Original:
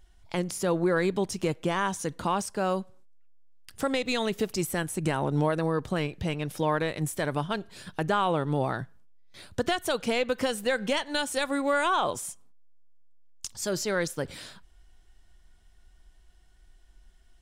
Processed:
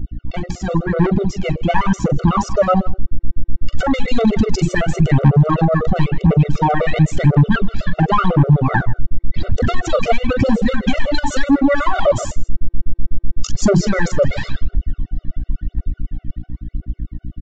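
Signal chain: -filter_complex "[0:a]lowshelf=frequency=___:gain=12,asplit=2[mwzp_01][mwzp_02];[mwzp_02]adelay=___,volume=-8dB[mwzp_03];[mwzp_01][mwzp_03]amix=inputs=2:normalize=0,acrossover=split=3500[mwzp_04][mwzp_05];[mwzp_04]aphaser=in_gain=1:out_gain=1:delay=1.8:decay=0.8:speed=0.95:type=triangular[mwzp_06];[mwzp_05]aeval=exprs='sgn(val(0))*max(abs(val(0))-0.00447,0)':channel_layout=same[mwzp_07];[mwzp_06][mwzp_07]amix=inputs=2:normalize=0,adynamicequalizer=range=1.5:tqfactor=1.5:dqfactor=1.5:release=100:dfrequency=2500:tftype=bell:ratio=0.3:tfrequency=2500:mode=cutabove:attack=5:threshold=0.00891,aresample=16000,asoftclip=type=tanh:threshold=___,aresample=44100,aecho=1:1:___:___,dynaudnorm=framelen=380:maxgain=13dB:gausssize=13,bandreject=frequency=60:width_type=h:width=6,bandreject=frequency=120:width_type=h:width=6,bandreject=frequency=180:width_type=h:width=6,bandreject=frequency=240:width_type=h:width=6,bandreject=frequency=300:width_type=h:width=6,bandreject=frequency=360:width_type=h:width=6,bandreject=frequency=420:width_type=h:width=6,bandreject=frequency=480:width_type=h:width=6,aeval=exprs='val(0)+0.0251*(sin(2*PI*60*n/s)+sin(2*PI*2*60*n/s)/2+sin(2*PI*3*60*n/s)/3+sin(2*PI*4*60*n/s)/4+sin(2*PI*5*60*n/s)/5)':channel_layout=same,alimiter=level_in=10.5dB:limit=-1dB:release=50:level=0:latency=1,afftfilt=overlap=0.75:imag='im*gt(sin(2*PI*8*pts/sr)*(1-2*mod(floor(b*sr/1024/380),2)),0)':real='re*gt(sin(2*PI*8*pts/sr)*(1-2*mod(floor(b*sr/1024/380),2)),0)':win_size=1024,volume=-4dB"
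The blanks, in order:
310, 42, -12dB, 160, 0.1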